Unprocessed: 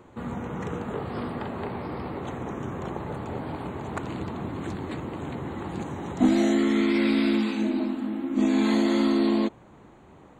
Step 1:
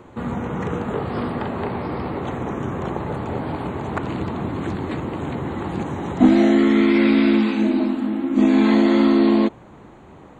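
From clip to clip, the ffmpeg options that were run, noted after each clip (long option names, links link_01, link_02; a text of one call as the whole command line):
ffmpeg -i in.wav -filter_complex "[0:a]acrossover=split=3800[link_01][link_02];[link_02]acompressor=threshold=-53dB:ratio=4:attack=1:release=60[link_03];[link_01][link_03]amix=inputs=2:normalize=0,highshelf=frequency=7000:gain=-5.5,volume=7dB" out.wav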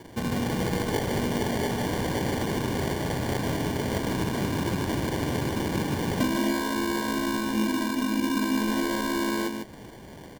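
ffmpeg -i in.wav -filter_complex "[0:a]acompressor=threshold=-22dB:ratio=12,acrusher=samples=34:mix=1:aa=0.000001,asplit=2[link_01][link_02];[link_02]aecho=0:1:150:0.473[link_03];[link_01][link_03]amix=inputs=2:normalize=0,volume=-1dB" out.wav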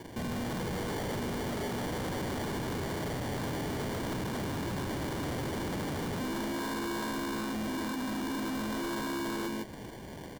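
ffmpeg -i in.wav -af "asoftclip=type=hard:threshold=-33dB" out.wav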